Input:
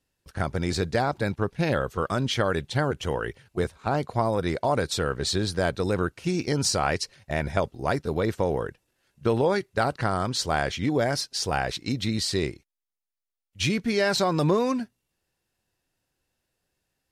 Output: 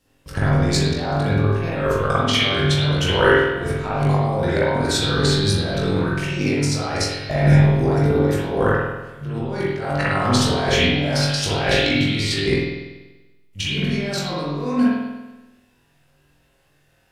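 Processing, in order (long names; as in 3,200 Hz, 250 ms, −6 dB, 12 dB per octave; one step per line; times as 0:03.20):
0:11.16–0:12.45: parametric band 2,700 Hz +9 dB 1.1 octaves
compressor whose output falls as the input rises −30 dBFS, ratio −0.5
flutter between parallel walls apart 3.5 metres, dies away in 0.33 s
spring reverb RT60 1.1 s, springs 48 ms, chirp 75 ms, DRR −7 dB
level +3 dB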